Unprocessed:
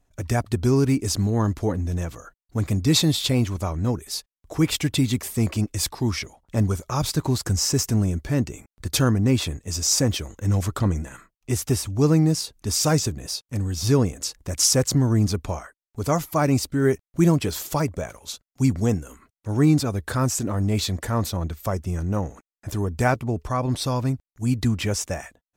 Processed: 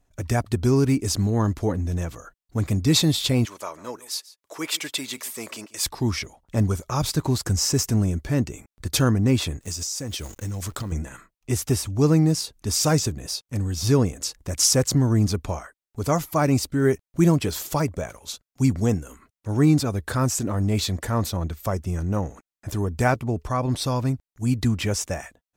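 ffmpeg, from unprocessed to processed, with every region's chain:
-filter_complex "[0:a]asettb=1/sr,asplit=3[s0][s1][s2];[s0]atrim=end=3.454[s3];[s1]atrim=start=3.45:end=5.86,asetpts=PTS-STARTPTS,afade=t=in:d=0.004:c=qsin,afade=t=out:st=2.406:d=0.004:c=qsin,highpass=570,bandreject=f=750:w=7.3,aecho=1:1:141:0.119,atrim=end_sample=106281[s4];[s2]atrim=start=5.856[s5];[s3][s4]acrossfade=d=0.004:c1=hsin:c2=qsin[s6];[s6][s5]acrossfade=d=0.004:c1=qsin:c2=hsin,asettb=1/sr,asplit=3[s7][s8][s9];[s7]atrim=end=9.604[s10];[s8]atrim=start=9.6:end=10.92,asetpts=PTS-STARTPTS,afade=t=in:d=0.004:c=qsin,afade=t=out:st=1.316:d=0.004:c=qsin,equalizer=f=8900:t=o:w=2.9:g=7,acrusher=bits=8:dc=4:mix=0:aa=0.000001,acompressor=threshold=0.0501:ratio=12:attack=3.2:release=140:knee=1:detection=peak[s11];[s9]atrim=start=10.916[s12];[s10][s11]acrossfade=d=0.004:c1=hsin:c2=qsin[s13];[s13][s12]acrossfade=d=0.004:c1=qsin:c2=hsin"

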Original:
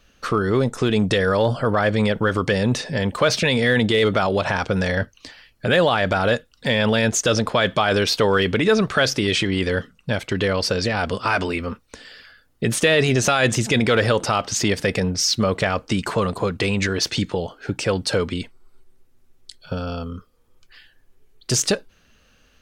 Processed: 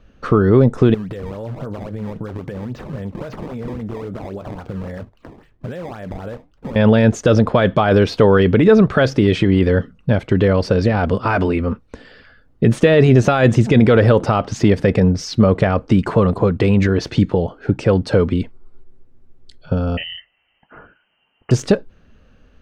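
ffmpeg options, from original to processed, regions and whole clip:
-filter_complex "[0:a]asettb=1/sr,asplit=3[s0][s1][s2];[s0]atrim=end=0.944[s3];[s1]atrim=start=0.94:end=6.76,asetpts=PTS-STARTPTS,afade=t=in:d=0.004:c=qsin,afade=t=out:st=5.816:d=0.004:c=qsin,acrusher=samples=18:mix=1:aa=0.000001:lfo=1:lforange=28.8:lforate=3.7,acompressor=threshold=0.0447:ratio=10:attack=3.2:release=140:knee=1:detection=peak,flanger=delay=2.7:depth=8.3:regen=-77:speed=1.2:shape=triangular[s4];[s2]atrim=start=6.756[s5];[s3][s4]acrossfade=d=0.004:c1=hsin:c2=qsin[s6];[s6][s5]acrossfade=d=0.004:c1=qsin:c2=hsin,asettb=1/sr,asplit=3[s7][s8][s9];[s7]atrim=end=19.974[s10];[s8]atrim=start=19.97:end=21.51,asetpts=PTS-STARTPTS,afade=t=in:d=0.004:c=qsin,afade=t=out:st=1.536:d=0.004:c=qsin,highpass=130,acontrast=82,lowpass=f=2700:t=q:w=0.5098,lowpass=f=2700:t=q:w=0.6013,lowpass=f=2700:t=q:w=0.9,lowpass=f=2700:t=q:w=2.563,afreqshift=-3200[s11];[s9]atrim=start=21.506[s12];[s10][s11]acrossfade=d=0.004:c1=hsin:c2=qsin[s13];[s13][s12]acrossfade=d=0.004:c1=qsin:c2=hsin,lowpass=f=1100:p=1,lowshelf=f=480:g=6,volume=1.58"

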